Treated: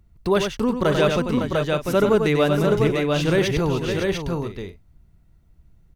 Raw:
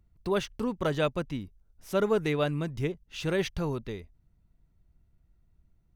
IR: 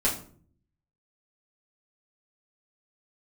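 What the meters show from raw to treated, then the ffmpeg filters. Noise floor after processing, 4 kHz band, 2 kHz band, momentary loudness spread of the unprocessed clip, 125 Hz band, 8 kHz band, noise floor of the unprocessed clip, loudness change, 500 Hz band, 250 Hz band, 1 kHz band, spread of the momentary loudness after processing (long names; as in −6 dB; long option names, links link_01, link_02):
−57 dBFS, +10.5 dB, +10.0 dB, 11 LU, +10.0 dB, +10.5 dB, −69 dBFS, +9.5 dB, +10.5 dB, +10.5 dB, +10.0 dB, 8 LU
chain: -filter_complex "[0:a]aecho=1:1:93|556|697|738:0.422|0.355|0.596|0.168,asplit=2[link_01][link_02];[link_02]alimiter=limit=-19.5dB:level=0:latency=1:release=36,volume=-3dB[link_03];[link_01][link_03]amix=inputs=2:normalize=0,volume=4dB"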